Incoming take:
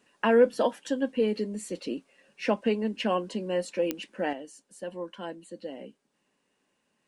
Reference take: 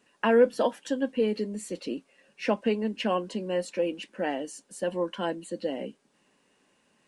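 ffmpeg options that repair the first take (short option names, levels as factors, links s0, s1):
-af "adeclick=t=4,asetnsamples=n=441:p=0,asendcmd='4.33 volume volume 7.5dB',volume=1"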